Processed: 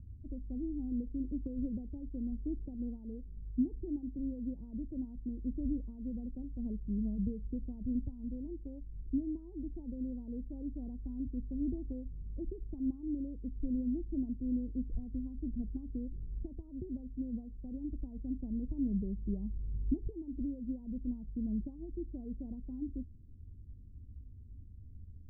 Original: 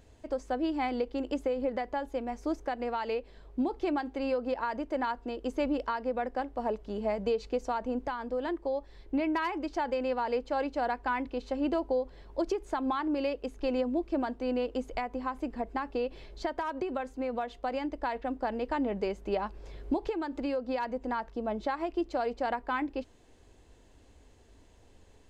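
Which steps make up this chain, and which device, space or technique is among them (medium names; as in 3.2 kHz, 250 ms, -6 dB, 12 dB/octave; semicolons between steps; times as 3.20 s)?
the neighbour's flat through the wall (low-pass 210 Hz 24 dB/octave; peaking EQ 84 Hz +7 dB 0.94 oct); 1.39–2.97 s: dynamic bell 400 Hz, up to +3 dB, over -56 dBFS, Q 1.4; trim +6.5 dB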